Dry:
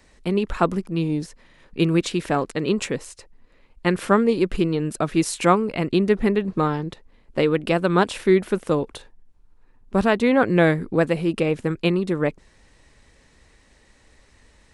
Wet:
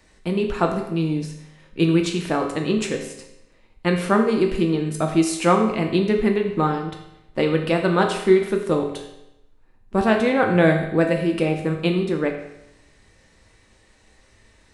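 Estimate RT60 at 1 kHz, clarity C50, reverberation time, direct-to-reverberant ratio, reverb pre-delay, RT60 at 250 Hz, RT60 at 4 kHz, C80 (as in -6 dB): 0.85 s, 6.5 dB, 0.85 s, 2.0 dB, 3 ms, 0.85 s, 0.80 s, 8.5 dB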